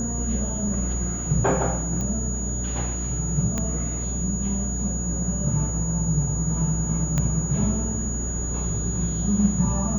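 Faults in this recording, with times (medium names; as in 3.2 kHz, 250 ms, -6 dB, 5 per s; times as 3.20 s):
hum 60 Hz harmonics 7 -29 dBFS
whine 6.8 kHz -30 dBFS
2.01 s: pop -17 dBFS
3.58 s: pop -13 dBFS
7.18 s: pop -11 dBFS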